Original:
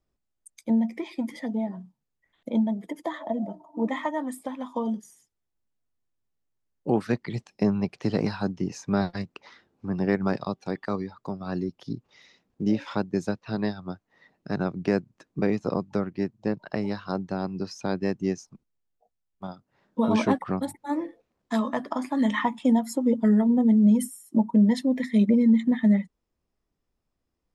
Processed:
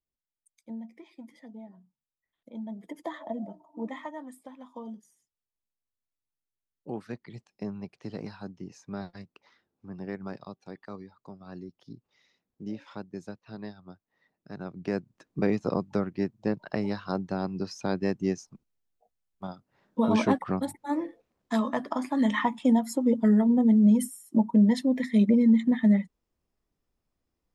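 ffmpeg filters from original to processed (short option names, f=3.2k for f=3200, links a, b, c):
-af "volume=7dB,afade=t=in:st=2.57:d=0.45:silence=0.251189,afade=t=out:st=3.02:d=1.33:silence=0.398107,afade=t=in:st=14.58:d=0.89:silence=0.266073"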